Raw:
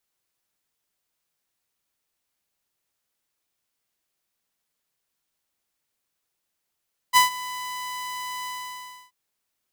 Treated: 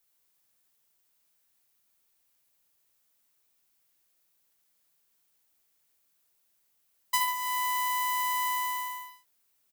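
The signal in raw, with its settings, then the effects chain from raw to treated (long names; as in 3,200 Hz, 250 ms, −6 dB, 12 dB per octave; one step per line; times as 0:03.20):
note with an ADSR envelope saw 999 Hz, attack 36 ms, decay 129 ms, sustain −19 dB, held 1.33 s, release 652 ms −9 dBFS
high-shelf EQ 10,000 Hz +10 dB
downward compressor 12 to 1, threshold −25 dBFS
multi-tap delay 73/141 ms −5.5/−9.5 dB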